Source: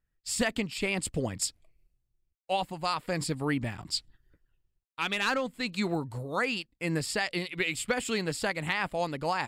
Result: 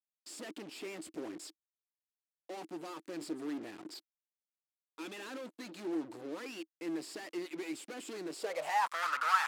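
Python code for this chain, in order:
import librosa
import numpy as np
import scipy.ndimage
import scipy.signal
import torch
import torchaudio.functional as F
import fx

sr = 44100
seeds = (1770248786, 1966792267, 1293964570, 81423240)

y = fx.fuzz(x, sr, gain_db=47.0, gate_db=-47.0)
y = fx.filter_sweep_bandpass(y, sr, from_hz=320.0, to_hz=1300.0, start_s=8.3, end_s=8.97, q=7.8)
y = np.diff(y, prepend=0.0)
y = y * librosa.db_to_amplitude(12.5)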